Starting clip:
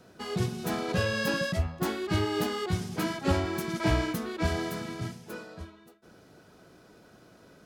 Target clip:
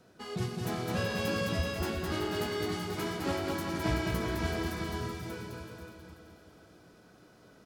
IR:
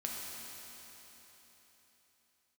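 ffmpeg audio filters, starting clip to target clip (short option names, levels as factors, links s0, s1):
-filter_complex "[0:a]asplit=2[s0][s1];[s1]aecho=0:1:486:0.316[s2];[s0][s2]amix=inputs=2:normalize=0,asettb=1/sr,asplit=3[s3][s4][s5];[s3]atrim=end=1.644[s6];[s4]atrim=start=1.64:end=3.54,asetpts=PTS-STARTPTS,afade=t=in:d=0.004:c=qsin,afade=t=out:st=1.896:d=0.004:c=qsin,acrossover=split=240[s7][s8];[s7]acompressor=threshold=0.02:ratio=6[s9];[s9][s8]amix=inputs=2:normalize=0[s10];[s5]atrim=start=3.536[s11];[s6][s10]acrossfade=d=0.004:c1=hsin:c2=qsin[s12];[s12][s11]acrossfade=d=0.004:c1=qsin:c2=hsin,aecho=1:1:210|378|512.4|619.9|705.9:0.631|0.398|0.251|0.158|0.1,asplit=2[s13][s14];[1:a]atrim=start_sample=2205,asetrate=34398,aresample=44100[s15];[s14][s15]afir=irnorm=-1:irlink=0,volume=0.178[s16];[s13][s16]amix=inputs=2:normalize=0,volume=0.473"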